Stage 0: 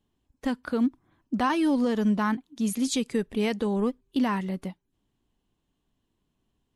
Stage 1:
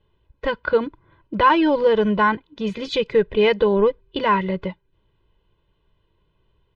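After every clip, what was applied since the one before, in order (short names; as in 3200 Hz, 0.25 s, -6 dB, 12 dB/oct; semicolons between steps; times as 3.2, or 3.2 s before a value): LPF 3500 Hz 24 dB/oct; comb 2 ms, depth 92%; gain +8 dB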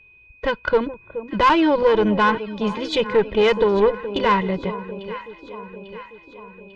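whine 2500 Hz -50 dBFS; echo with dull and thin repeats by turns 0.423 s, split 970 Hz, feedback 72%, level -12.5 dB; tube stage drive 11 dB, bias 0.45; gain +3 dB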